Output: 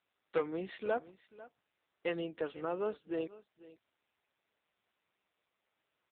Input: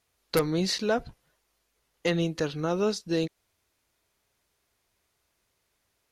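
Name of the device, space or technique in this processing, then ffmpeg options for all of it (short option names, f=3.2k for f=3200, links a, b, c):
satellite phone: -af "highpass=360,lowpass=3.1k,aecho=1:1:494:0.119,volume=-5.5dB" -ar 8000 -c:a libopencore_amrnb -b:a 6700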